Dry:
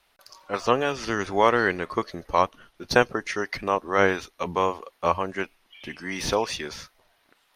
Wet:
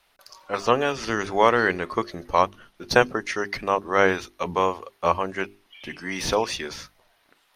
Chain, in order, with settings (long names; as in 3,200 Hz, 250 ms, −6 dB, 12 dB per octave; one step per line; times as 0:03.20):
mains-hum notches 50/100/150/200/250/300/350/400 Hz
level +1.5 dB